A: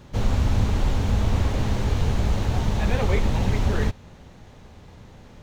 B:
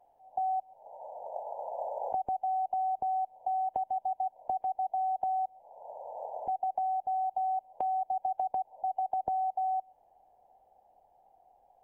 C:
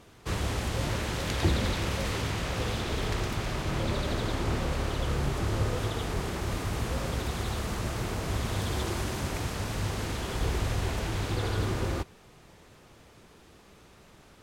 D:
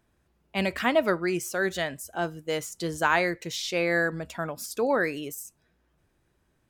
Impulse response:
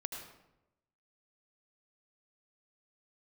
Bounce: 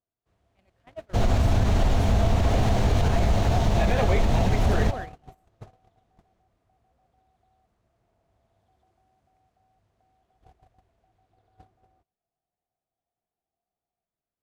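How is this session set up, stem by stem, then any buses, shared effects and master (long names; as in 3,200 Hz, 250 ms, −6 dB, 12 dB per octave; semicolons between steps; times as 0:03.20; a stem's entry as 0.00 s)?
+3.0 dB, 1.00 s, no send, no processing
−4.5 dB, 2.20 s, no send, high-pass filter 450 Hz 24 dB per octave; downward compressor 1.5 to 1, threshold −51 dBFS, peak gain reduction 8.5 dB
−8.5 dB, 0.00 s, no send, high-shelf EQ 2,400 Hz −6.5 dB
−14.5 dB, 0.00 s, no send, no processing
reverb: not used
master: noise gate −31 dBFS, range −32 dB; parametric band 680 Hz +12 dB 0.21 octaves; brickwall limiter −12.5 dBFS, peak gain reduction 6.5 dB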